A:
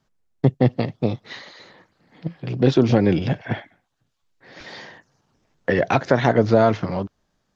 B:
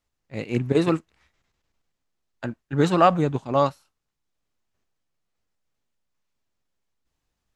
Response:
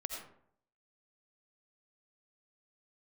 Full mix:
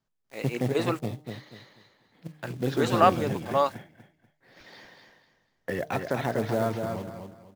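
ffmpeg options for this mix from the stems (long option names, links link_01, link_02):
-filter_complex "[0:a]bandreject=frequency=152.3:width_type=h:width=4,bandreject=frequency=304.6:width_type=h:width=4,bandreject=frequency=456.9:width_type=h:width=4,bandreject=frequency=609.2:width_type=h:width=4,bandreject=frequency=761.5:width_type=h:width=4,bandreject=frequency=913.8:width_type=h:width=4,bandreject=frequency=1066.1:width_type=h:width=4,bandreject=frequency=1218.4:width_type=h:width=4,acrusher=bits=5:mode=log:mix=0:aa=0.000001,volume=-11.5dB,asplit=2[link_01][link_02];[link_02]volume=-5.5dB[link_03];[1:a]highpass=460,acrusher=bits=7:mix=0:aa=0.000001,volume=-2dB[link_04];[link_03]aecho=0:1:243|486|729|972:1|0.28|0.0784|0.022[link_05];[link_01][link_04][link_05]amix=inputs=3:normalize=0"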